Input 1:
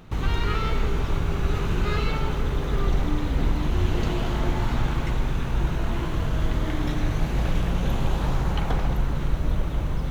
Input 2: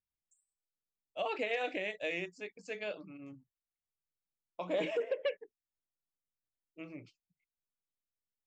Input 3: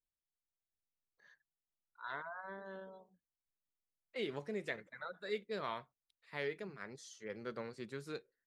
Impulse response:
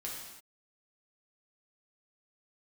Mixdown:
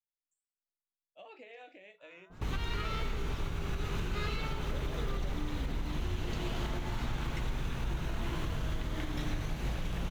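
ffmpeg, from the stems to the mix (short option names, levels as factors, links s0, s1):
-filter_complex "[0:a]alimiter=limit=0.1:level=0:latency=1:release=257,adynamicequalizer=threshold=0.00355:dfrequency=1700:dqfactor=0.7:tfrequency=1700:tqfactor=0.7:attack=5:release=100:ratio=0.375:range=2.5:mode=boostabove:tftype=highshelf,adelay=2300,volume=0.531[s0];[1:a]alimiter=level_in=1.68:limit=0.0631:level=0:latency=1:release=65,volume=0.596,flanger=delay=9.7:depth=8.1:regen=62:speed=0.29:shape=triangular,volume=0.316[s1];[2:a]alimiter=level_in=3.35:limit=0.0631:level=0:latency=1,volume=0.299,volume=0.119[s2];[s0][s1][s2]amix=inputs=3:normalize=0"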